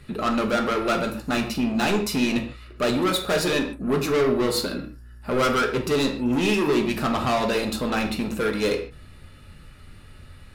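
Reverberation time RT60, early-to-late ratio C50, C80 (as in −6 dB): non-exponential decay, 9.0 dB, 12.0 dB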